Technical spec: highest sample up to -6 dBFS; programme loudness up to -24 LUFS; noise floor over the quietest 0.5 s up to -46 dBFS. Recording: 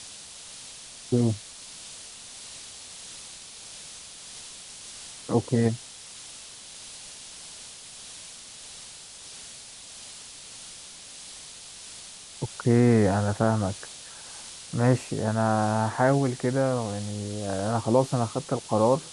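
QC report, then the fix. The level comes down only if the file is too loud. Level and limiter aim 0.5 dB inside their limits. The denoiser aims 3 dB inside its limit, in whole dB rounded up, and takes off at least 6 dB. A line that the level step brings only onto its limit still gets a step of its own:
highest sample -8.0 dBFS: OK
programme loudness -25.5 LUFS: OK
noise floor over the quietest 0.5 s -44 dBFS: fail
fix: denoiser 6 dB, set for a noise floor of -44 dBFS

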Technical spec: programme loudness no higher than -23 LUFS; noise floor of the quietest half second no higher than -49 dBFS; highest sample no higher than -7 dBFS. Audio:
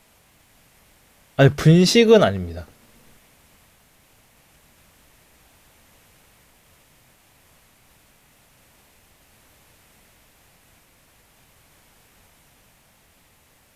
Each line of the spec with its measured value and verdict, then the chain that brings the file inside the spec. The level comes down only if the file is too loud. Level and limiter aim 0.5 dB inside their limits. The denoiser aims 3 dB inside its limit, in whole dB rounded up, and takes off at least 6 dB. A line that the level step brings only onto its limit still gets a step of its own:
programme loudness -16.0 LUFS: fail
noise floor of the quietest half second -58 dBFS: OK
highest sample -3.0 dBFS: fail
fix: gain -7.5 dB

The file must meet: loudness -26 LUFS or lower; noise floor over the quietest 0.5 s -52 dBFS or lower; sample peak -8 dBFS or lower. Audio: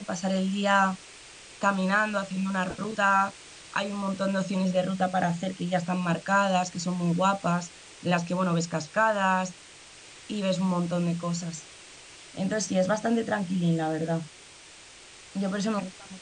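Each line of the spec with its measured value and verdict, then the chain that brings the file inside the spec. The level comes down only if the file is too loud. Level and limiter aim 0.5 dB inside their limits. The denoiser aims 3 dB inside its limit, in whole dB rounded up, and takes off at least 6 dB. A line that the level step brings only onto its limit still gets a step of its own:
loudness -27.5 LUFS: OK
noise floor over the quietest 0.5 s -49 dBFS: fail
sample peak -10.0 dBFS: OK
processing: denoiser 6 dB, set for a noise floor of -49 dBFS

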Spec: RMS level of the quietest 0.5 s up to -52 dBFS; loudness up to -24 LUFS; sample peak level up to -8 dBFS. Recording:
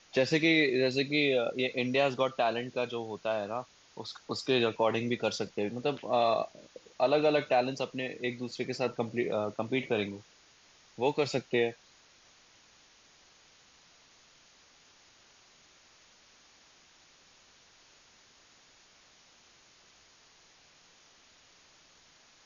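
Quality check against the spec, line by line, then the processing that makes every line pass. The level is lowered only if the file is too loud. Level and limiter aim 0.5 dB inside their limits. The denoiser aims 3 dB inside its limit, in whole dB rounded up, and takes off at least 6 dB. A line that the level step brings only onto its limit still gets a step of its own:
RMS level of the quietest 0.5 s -61 dBFS: OK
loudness -30.5 LUFS: OK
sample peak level -14.0 dBFS: OK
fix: none

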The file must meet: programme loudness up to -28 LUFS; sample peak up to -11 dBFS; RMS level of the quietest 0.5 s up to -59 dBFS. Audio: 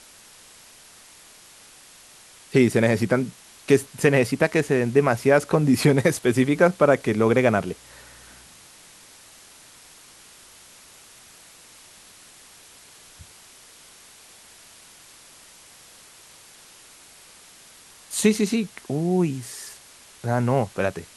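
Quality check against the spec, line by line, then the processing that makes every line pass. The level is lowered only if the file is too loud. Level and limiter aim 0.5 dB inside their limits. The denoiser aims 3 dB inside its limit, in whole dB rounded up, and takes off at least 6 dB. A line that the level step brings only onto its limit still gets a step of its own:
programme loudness -21.5 LUFS: fail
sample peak -3.5 dBFS: fail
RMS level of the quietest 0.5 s -49 dBFS: fail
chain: denoiser 6 dB, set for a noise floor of -49 dBFS; gain -7 dB; limiter -11.5 dBFS

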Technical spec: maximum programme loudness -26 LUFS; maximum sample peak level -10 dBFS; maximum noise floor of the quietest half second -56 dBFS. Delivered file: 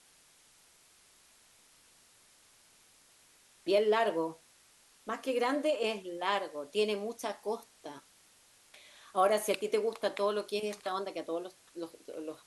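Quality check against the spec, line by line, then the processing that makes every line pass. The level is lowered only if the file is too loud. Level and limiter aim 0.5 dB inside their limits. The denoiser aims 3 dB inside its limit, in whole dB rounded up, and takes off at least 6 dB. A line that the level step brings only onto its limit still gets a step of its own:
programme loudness -33.5 LUFS: OK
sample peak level -15.5 dBFS: OK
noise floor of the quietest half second -63 dBFS: OK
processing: none

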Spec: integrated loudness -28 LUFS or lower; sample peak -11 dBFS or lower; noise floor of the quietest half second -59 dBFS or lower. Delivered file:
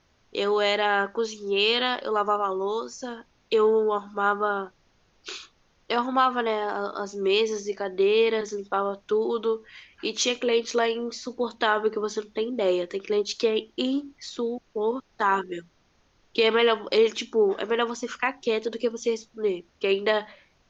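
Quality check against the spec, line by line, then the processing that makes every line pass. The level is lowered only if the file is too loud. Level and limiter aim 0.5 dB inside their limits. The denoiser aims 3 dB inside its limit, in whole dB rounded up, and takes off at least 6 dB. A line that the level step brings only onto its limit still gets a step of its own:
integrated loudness -25.5 LUFS: fail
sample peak -9.5 dBFS: fail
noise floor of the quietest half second -64 dBFS: OK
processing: gain -3 dB

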